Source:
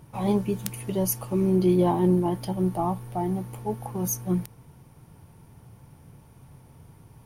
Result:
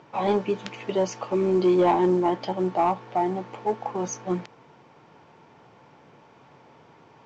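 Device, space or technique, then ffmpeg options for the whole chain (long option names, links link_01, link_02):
telephone: -af "highpass=390,lowpass=3600,asoftclip=type=tanh:threshold=-20.5dB,volume=8dB" -ar 16000 -c:a pcm_mulaw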